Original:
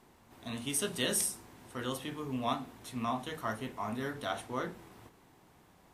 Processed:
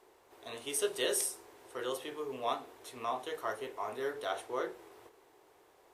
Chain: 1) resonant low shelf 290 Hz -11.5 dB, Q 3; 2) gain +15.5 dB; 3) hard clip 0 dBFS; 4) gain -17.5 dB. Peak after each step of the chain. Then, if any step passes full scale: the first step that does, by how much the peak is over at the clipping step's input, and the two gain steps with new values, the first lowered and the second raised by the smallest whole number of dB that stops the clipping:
-17.0, -1.5, -1.5, -19.0 dBFS; no overload

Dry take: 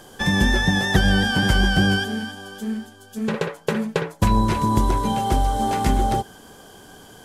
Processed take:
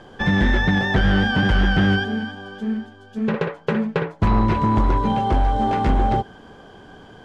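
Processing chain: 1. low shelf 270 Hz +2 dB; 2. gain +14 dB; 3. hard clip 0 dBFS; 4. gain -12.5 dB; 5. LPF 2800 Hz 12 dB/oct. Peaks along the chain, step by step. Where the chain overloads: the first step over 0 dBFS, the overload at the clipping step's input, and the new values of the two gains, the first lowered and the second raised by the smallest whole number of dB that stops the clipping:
-4.5, +9.5, 0.0, -12.5, -12.0 dBFS; step 2, 9.5 dB; step 2 +4 dB, step 4 -2.5 dB

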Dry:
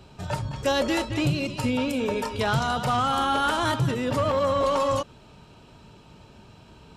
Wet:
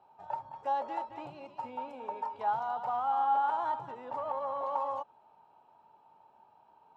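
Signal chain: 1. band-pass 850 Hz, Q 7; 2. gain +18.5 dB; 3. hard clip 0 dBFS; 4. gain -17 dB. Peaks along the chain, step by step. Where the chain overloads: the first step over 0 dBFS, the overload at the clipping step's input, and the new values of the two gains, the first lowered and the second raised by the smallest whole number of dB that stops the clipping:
-21.5, -3.0, -3.0, -20.0 dBFS; no overload

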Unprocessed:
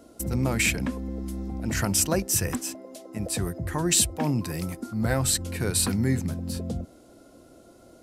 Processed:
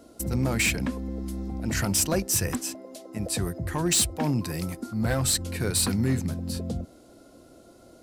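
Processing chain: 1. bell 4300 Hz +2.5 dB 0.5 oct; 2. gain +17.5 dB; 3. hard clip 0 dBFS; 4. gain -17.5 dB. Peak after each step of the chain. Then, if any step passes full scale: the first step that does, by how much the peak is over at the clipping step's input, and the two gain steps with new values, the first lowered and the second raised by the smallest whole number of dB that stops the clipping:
-10.0, +7.5, 0.0, -17.5 dBFS; step 2, 7.5 dB; step 2 +9.5 dB, step 4 -9.5 dB

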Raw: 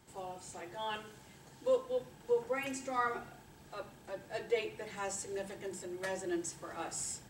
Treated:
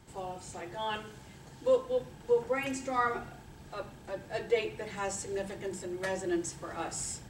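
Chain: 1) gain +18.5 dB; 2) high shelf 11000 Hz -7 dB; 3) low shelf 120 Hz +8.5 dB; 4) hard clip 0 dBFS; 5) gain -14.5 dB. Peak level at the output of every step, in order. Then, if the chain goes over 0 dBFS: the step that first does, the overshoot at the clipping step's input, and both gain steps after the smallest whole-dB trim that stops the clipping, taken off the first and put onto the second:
-2.0, -2.0, -2.0, -2.0, -16.5 dBFS; no overload

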